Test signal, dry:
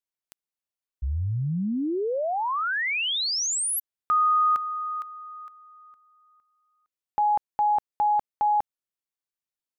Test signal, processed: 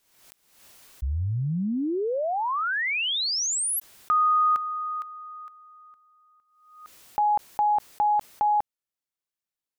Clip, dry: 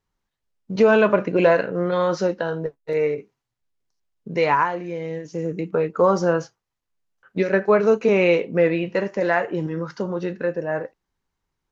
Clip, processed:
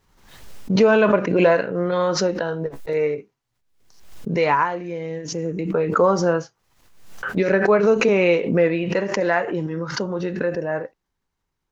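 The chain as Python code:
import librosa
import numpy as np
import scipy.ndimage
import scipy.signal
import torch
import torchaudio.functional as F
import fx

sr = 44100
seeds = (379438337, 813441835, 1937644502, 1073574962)

y = fx.pre_swell(x, sr, db_per_s=66.0)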